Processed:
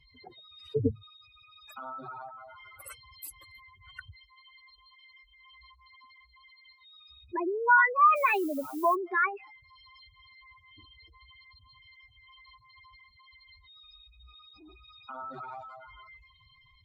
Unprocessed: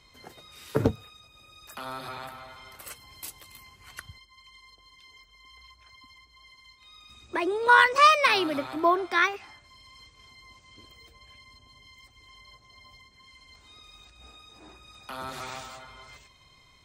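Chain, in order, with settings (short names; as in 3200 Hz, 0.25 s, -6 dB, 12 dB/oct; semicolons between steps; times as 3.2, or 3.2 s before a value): spectral contrast raised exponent 3.3; 8.15–8.94 added noise violet -47 dBFS; gain -2.5 dB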